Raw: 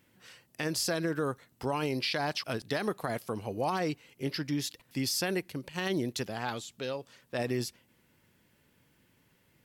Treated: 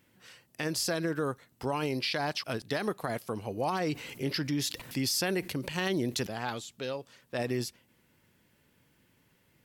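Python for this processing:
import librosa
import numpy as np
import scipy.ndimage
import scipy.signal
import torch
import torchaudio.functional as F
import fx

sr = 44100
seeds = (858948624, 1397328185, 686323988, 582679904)

y = fx.env_flatten(x, sr, amount_pct=50, at=(3.87, 6.27))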